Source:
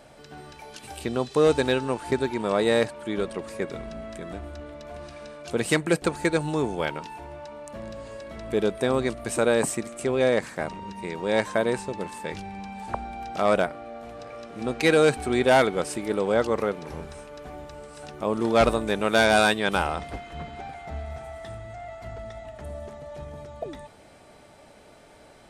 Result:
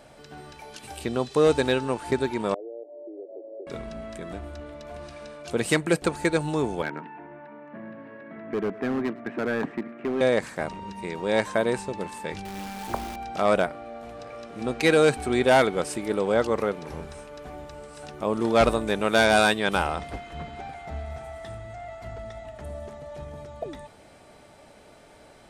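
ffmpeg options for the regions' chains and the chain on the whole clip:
-filter_complex "[0:a]asettb=1/sr,asplit=3[a][b][c];[a]atrim=end=2.544[d];[b]atrim=start=2.54:end=3.67,asetpts=PTS-STARTPTS,afade=t=in:d=0.004:c=qsin,afade=t=out:st=1.126:d=0.004:c=qsin,acompressor=threshold=-33dB:ratio=12:attack=3.2:release=140:knee=1:detection=peak,asuperpass=centerf=470:order=12:qfactor=1.1[e];[c]atrim=start=3.666[f];[d][e]acrossfade=d=0.004:c1=hsin:c2=qsin[g];[g][f]acrossfade=d=0.004:c1=qsin:c2=hsin,asettb=1/sr,asplit=3[h][i][j];[h]atrim=end=6.824[k];[i]atrim=start=6.82:end=10.21,asetpts=PTS-STARTPTS,afade=t=in:d=0.004:c=qsin,afade=t=out:st=3.386:d=0.004:c=qsin,highpass=f=150:w=0.5412,highpass=f=150:w=1.3066,equalizer=f=270:t=q:w=4:g=5,equalizer=f=540:t=q:w=4:g=-8,equalizer=f=840:t=q:w=4:g=-3,equalizer=f=1.2k:t=q:w=4:g=-4,equalizer=f=1.7k:t=q:w=4:g=4,lowpass=f=2.1k:w=0.5412,lowpass=f=2.1k:w=1.3066,asoftclip=type=hard:threshold=-22dB,aecho=1:1:108:0.075,atrim=end_sample=149499[l];[j]atrim=start=10.206[m];[k][l]acrossfade=d=0.004:c1=hsin:c2=qsin[n];[n][m]acrossfade=d=0.004:c1=qsin:c2=hsin,asettb=1/sr,asplit=3[o][p][q];[o]atrim=end=12.454[r];[p]atrim=start=12.45:end=13.16,asetpts=PTS-STARTPTS,afade=t=in:d=0.004:c=qsin,afade=t=out:st=0.706:d=0.004:c=qsin,equalizer=f=330:t=o:w=0.7:g=8,bandreject=f=101.5:t=h:w=4,bandreject=f=203:t=h:w=4,bandreject=f=304.5:t=h:w=4,bandreject=f=406:t=h:w=4,bandreject=f=507.5:t=h:w=4,bandreject=f=609:t=h:w=4,bandreject=f=710.5:t=h:w=4,bandreject=f=812:t=h:w=4,bandreject=f=913.5:t=h:w=4,bandreject=f=1.015k:t=h:w=4,bandreject=f=1.1165k:t=h:w=4,bandreject=f=1.218k:t=h:w=4,bandreject=f=1.3195k:t=h:w=4,bandreject=f=1.421k:t=h:w=4,bandreject=f=1.5225k:t=h:w=4,bandreject=f=1.624k:t=h:w=4,bandreject=f=1.7255k:t=h:w=4,bandreject=f=1.827k:t=h:w=4,bandreject=f=1.9285k:t=h:w=4,bandreject=f=2.03k:t=h:w=4,bandreject=f=2.1315k:t=h:w=4,bandreject=f=2.233k:t=h:w=4,bandreject=f=2.3345k:t=h:w=4,bandreject=f=2.436k:t=h:w=4,bandreject=f=2.5375k:t=h:w=4,bandreject=f=2.639k:t=h:w=4,bandreject=f=2.7405k:t=h:w=4,bandreject=f=2.842k:t=h:w=4,bandreject=f=2.9435k:t=h:w=4,bandreject=f=3.045k:t=h:w=4,bandreject=f=3.1465k:t=h:w=4,bandreject=f=3.248k:t=h:w=4,bandreject=f=3.3495k:t=h:w=4,acrusher=bits=7:dc=4:mix=0:aa=0.000001[s];[q]atrim=start=13.156[t];[r][s]acrossfade=d=0.004:c1=hsin:c2=qsin[u];[u][t]acrossfade=d=0.004:c1=qsin:c2=hsin"

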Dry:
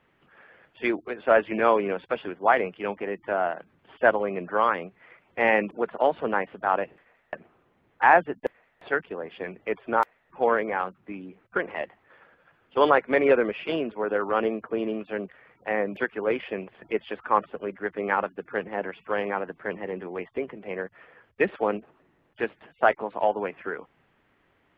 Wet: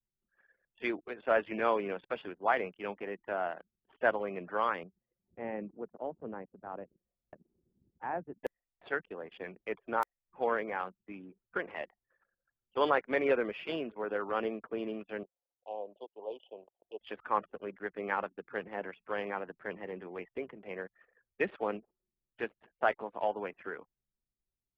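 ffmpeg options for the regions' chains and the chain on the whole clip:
-filter_complex "[0:a]asettb=1/sr,asplit=3[a][b][c];[a]atrim=end=4.834[d];[b]atrim=start=4.83:end=8.37,asetpts=PTS-STARTPTS,afade=t=in:d=0.004:c=qsin,afade=t=out:st=3.536:d=0.004:c=qsin,acompressor=mode=upward:threshold=-39dB:ratio=2.5:attack=3.2:release=140:knee=2.83:detection=peak,bandpass=f=120:t=q:w=0.5[e];[c]atrim=start=8.366[f];[d][e]acrossfade=d=0.004:c1=hsin:c2=qsin[g];[g][f]acrossfade=d=0.004:c1=qsin:c2=hsin,asettb=1/sr,asplit=3[h][i][j];[h]atrim=end=15.234[k];[i]atrim=start=15.23:end=17.01,asetpts=PTS-STARTPTS,afade=t=in:d=0.004:c=qsin,afade=t=out:st=1.776:d=0.004:c=qsin,asuperstop=centerf=1700:order=12:qfactor=0.84,acrossover=split=500 3800:gain=0.0794 1 0.141[l][m][n];[l][m][n]amix=inputs=3:normalize=0[o];[j]atrim=start=17.006[p];[k][o]acrossfade=d=0.004:c1=hsin:c2=qsin[q];[q][p]acrossfade=d=0.004:c1=qsin:c2=hsin,anlmdn=0.0158,aemphasis=mode=production:type=50fm,volume=-8.5dB"

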